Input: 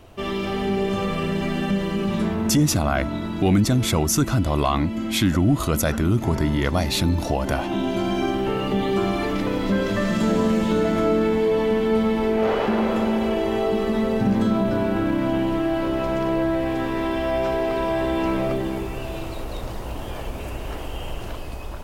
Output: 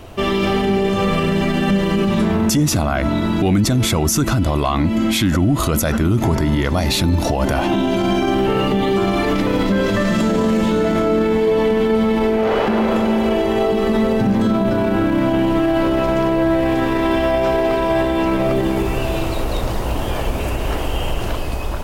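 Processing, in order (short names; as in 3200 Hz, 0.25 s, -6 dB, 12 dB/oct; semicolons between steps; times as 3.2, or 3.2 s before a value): maximiser +18 dB; gain -8 dB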